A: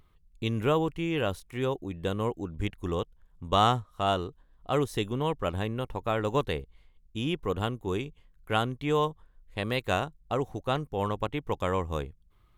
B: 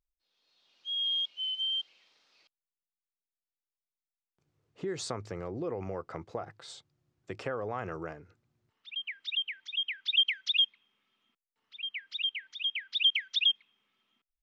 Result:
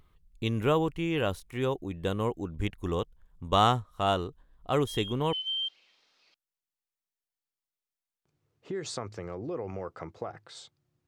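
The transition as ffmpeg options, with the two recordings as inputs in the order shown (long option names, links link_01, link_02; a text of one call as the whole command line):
ffmpeg -i cue0.wav -i cue1.wav -filter_complex "[1:a]asplit=2[link_01][link_02];[0:a]apad=whole_dur=11.07,atrim=end=11.07,atrim=end=5.332[link_03];[link_02]atrim=start=1.458:end=7.2[link_04];[link_01]atrim=start=1:end=1.46,asetpts=PTS-STARTPTS,volume=-11dB,afade=type=in:duration=0.004:curve=hsin,afade=type=out:start_time=0.456:duration=0.004:curve=hsin,adelay=4870[link_05];[link_03][link_04]acrossfade=duration=0.004:curve1=hsin:curve2=hsin[link_06];[link_06][link_05]amix=inputs=2:normalize=0" out.wav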